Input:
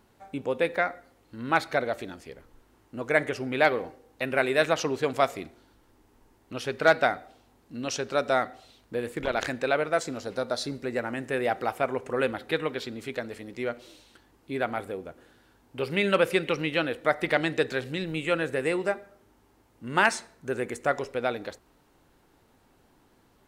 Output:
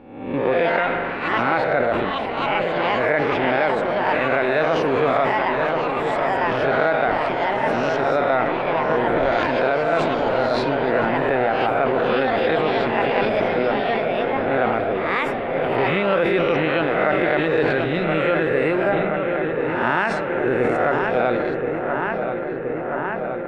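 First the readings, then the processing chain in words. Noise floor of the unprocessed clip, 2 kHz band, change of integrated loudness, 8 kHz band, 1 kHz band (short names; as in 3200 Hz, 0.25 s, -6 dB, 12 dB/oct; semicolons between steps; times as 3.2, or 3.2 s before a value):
-63 dBFS, +7.5 dB, +7.5 dB, n/a, +11.0 dB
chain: spectral swells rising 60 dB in 0.86 s; in parallel at -8 dB: crossover distortion -33 dBFS; on the sum: darkening echo 1.024 s, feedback 83%, low-pass 3000 Hz, level -10 dB; spring tank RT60 3.4 s, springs 41 ms, chirp 50 ms, DRR 16 dB; echoes that change speed 0.198 s, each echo +5 st, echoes 2, each echo -6 dB; dynamic EQ 7300 Hz, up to +6 dB, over -43 dBFS, Q 1; compressor 10:1, threshold -20 dBFS, peak gain reduction 11.5 dB; air absorption 450 m; sustainer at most 23 dB/s; gain +6.5 dB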